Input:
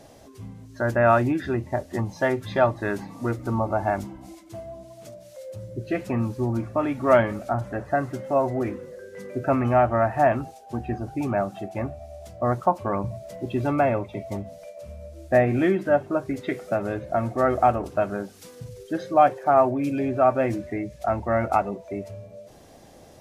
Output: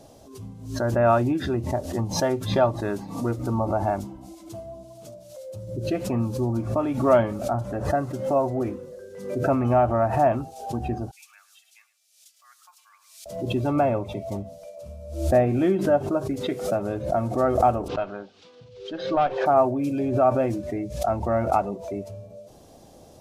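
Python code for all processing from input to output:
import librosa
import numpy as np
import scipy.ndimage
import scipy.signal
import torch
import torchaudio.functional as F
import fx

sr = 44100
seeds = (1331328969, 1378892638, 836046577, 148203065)

y = fx.chain(x, sr, fx.bessel_highpass(hz=2900.0, order=6),
    fx.echo_single(ms=107, db=-17.0), at=(11.11, 13.26))
y = fx.chain(y, sr, fx.lowpass(hz=3500.0, slope=24),
    fx.tilt_eq(slope=3.5),
    fx.tube_stage(drive_db=11.0, bias=0.5), at=(17.88, 19.46))
y = fx.peak_eq(y, sr, hz=1900.0, db=-10.0, octaves=0.83)
y = fx.pre_swell(y, sr, db_per_s=81.0)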